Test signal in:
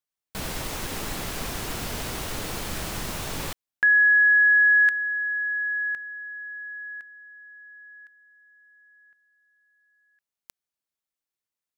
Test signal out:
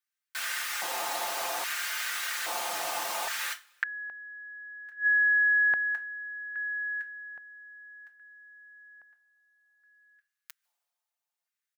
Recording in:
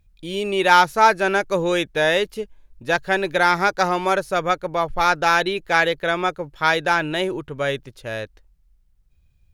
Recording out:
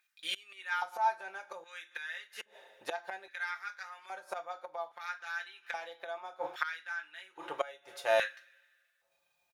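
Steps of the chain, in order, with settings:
low-shelf EQ 95 Hz +4.5 dB
coupled-rooms reverb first 0.24 s, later 1.8 s, from −28 dB, DRR 4 dB
gate with flip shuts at −15 dBFS, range −25 dB
comb filter 5.7 ms, depth 60%
auto-filter high-pass square 0.61 Hz 770–1,600 Hz
level −3 dB

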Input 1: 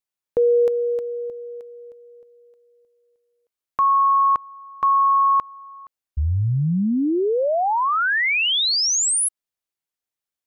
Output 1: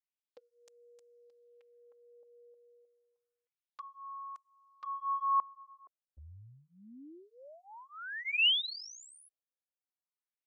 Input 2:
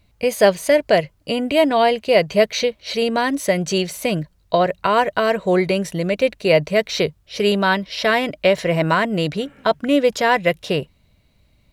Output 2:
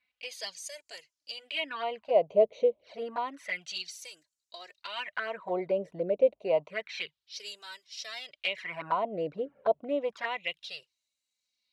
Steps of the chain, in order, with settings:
auto-filter band-pass sine 0.29 Hz 510–7,200 Hz
flanger swept by the level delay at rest 4 ms, full sweep at −22 dBFS
level −3 dB

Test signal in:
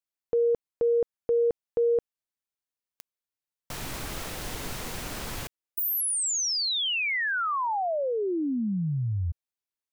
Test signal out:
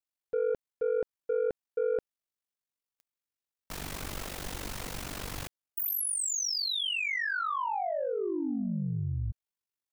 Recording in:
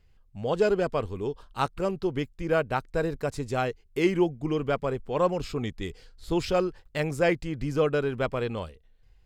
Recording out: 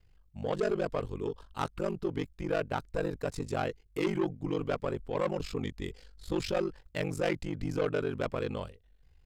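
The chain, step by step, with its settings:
soft clipping −21.5 dBFS
ring modulation 24 Hz

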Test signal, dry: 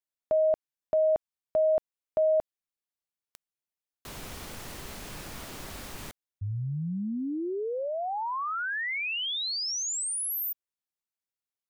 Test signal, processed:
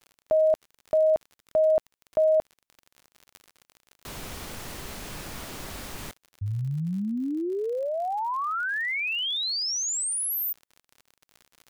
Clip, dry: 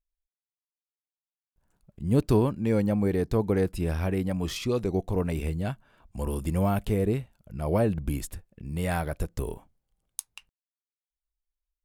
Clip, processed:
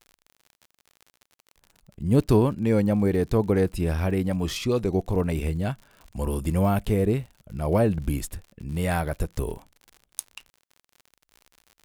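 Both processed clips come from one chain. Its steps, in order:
surface crackle 60 per second −40 dBFS
level +3 dB

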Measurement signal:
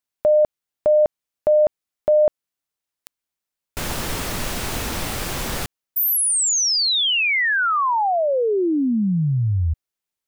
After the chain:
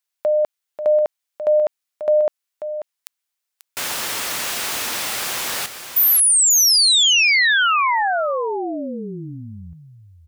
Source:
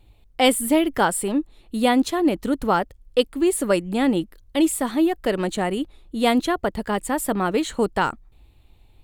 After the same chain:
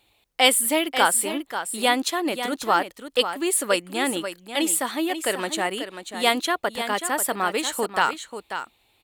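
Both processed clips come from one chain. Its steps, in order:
high-pass filter 1,300 Hz 6 dB per octave
on a send: single-tap delay 539 ms −9.5 dB
on the sum: level +5 dB

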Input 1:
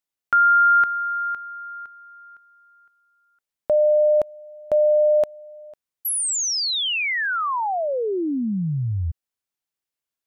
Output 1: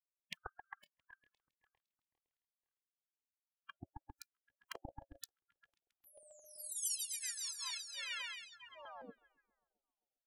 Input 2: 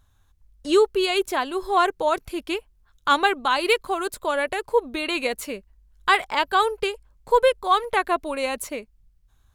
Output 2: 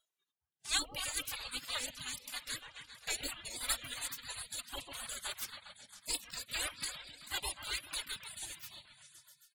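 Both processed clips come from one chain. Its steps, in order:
parametric band 3,100 Hz +9 dB 0.26 octaves
echo whose low-pass opens from repeat to repeat 134 ms, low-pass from 750 Hz, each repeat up 1 octave, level −6 dB
reverb reduction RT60 0.63 s
comb filter 2.5 ms, depth 60%
gate on every frequency bin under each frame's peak −30 dB weak
noise reduction from a noise print of the clip's start 20 dB
notch on a step sequencer 6.1 Hz 220–1,500 Hz
level +2.5 dB

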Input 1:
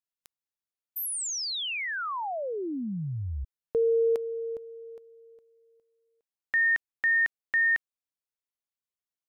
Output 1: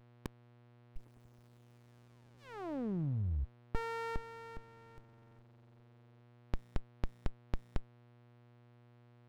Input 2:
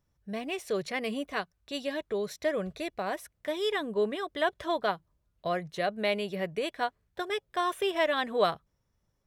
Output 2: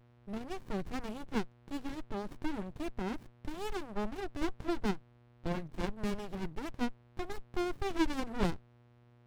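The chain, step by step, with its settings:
hum with harmonics 120 Hz, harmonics 35, −60 dBFS −7 dB per octave
windowed peak hold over 65 samples
level −1.5 dB

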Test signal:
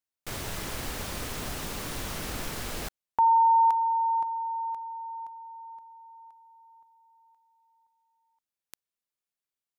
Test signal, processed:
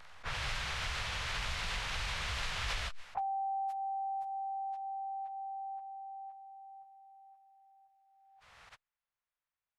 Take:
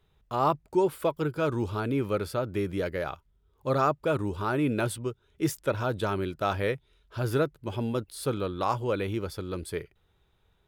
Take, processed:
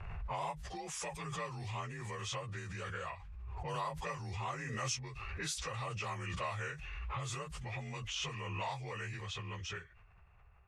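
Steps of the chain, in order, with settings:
partials spread apart or drawn together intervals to 88%
low-pass that shuts in the quiet parts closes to 1,200 Hz, open at −25 dBFS
downward compressor 4 to 1, threshold −44 dBFS
guitar amp tone stack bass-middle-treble 10-0-10
background raised ahead of every attack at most 23 dB per second
level +16.5 dB

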